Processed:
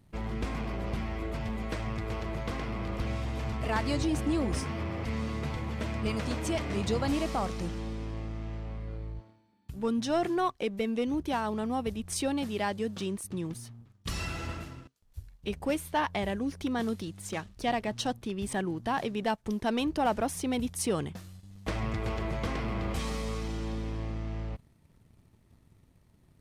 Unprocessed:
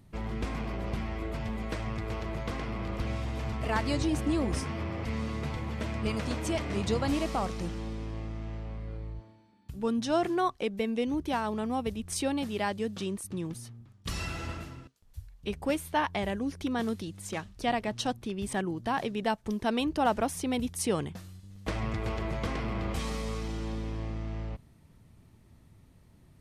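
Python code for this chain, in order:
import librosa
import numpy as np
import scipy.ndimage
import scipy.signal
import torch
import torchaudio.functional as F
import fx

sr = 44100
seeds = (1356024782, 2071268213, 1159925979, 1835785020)

y = fx.leveller(x, sr, passes=1)
y = y * librosa.db_to_amplitude(-3.5)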